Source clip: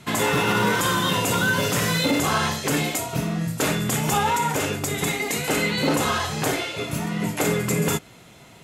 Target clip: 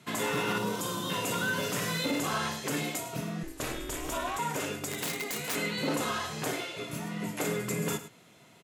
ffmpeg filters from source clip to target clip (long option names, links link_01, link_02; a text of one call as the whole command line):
ffmpeg -i in.wav -filter_complex "[0:a]asettb=1/sr,asplit=3[link_01][link_02][link_03];[link_01]atrim=end=0.584[link_04];[link_02]atrim=start=0.58:end=1.1,asetpts=PTS-STARTPTS,afade=type=in:duration=0.004:curve=qsin,afade=type=out:start_time=0.516:duration=0.004:curve=qsin,equalizer=frequency=1800:width_type=o:width=1.1:gain=-13[link_05];[link_03]atrim=start=1.096[link_06];[link_04][link_05]acrossfade=duration=0.004:curve1=hsin:curve2=qsin[link_07];[link_07][link_06]acrossfade=duration=0.004:curve1=qsin:curve2=hsin,aecho=1:1:105:0.211,asettb=1/sr,asplit=3[link_08][link_09][link_10];[link_08]atrim=end=4.894[link_11];[link_09]atrim=start=4.89:end=5.55,asetpts=PTS-STARTPTS,afade=type=in:duration=0.004:curve=qsin,afade=type=out:start_time=0.656:duration=0.004:curve=qsin,aeval=exprs='(mod(7.08*val(0)+1,2)-1)/7.08':channel_layout=same[link_12];[link_10]atrim=start=5.546[link_13];[link_11][link_12]acrossfade=duration=0.004:curve1=hsin:curve2=qsin[link_14];[link_14][link_13]acrossfade=duration=0.004:curve1=qsin:curve2=hsin,highpass=130,asettb=1/sr,asplit=3[link_15][link_16][link_17];[link_15]atrim=end=3.434[link_18];[link_16]atrim=start=3.43:end=4.39,asetpts=PTS-STARTPTS,afade=type=in:duration=0.004:curve=qsin,afade=type=out:start_time=0.956:duration=0.004:curve=qsin,aeval=exprs='val(0)*sin(2*PI*160*n/s)':channel_layout=same[link_19];[link_17]atrim=start=4.386[link_20];[link_18][link_19]acrossfade=duration=0.004:curve1=hsin:curve2=qsin[link_21];[link_21][link_20]acrossfade=duration=0.004:curve1=qsin:curve2=hsin,bandreject=frequency=820:width=17,volume=-9dB" out.wav